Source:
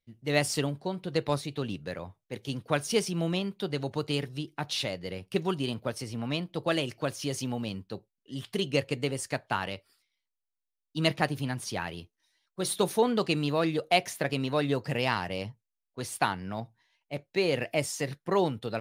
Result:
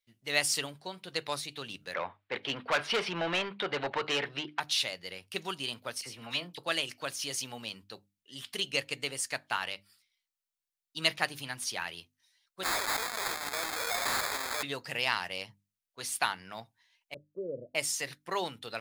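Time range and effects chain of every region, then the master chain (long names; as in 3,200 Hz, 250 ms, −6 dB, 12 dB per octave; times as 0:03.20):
0:01.94–0:04.60: high-frequency loss of the air 420 metres + mid-hump overdrive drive 26 dB, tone 2,600 Hz, clips at −14 dBFS
0:06.01–0:06.58: double-tracking delay 23 ms −13.5 dB + all-pass dispersion lows, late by 49 ms, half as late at 1,500 Hz
0:12.63–0:14.63: sign of each sample alone + high-pass filter 560 Hz + sample-rate reduction 2,900 Hz
0:17.14–0:17.75: Butterworth low-pass 610 Hz 96 dB per octave + multiband upward and downward expander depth 40%
whole clip: tilt shelving filter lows −9.5 dB, about 720 Hz; mains-hum notches 50/100/150/200/250/300 Hz; level −6 dB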